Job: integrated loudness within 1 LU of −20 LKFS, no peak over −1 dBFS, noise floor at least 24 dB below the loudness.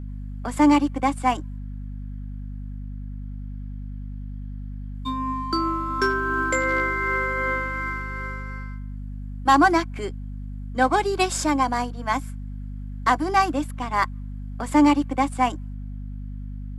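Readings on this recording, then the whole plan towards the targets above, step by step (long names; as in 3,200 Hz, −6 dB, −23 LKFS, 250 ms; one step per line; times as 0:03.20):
mains hum 50 Hz; hum harmonics up to 250 Hz; level of the hum −31 dBFS; integrated loudness −23.0 LKFS; sample peak −5.0 dBFS; target loudness −20.0 LKFS
→ hum removal 50 Hz, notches 5
level +3 dB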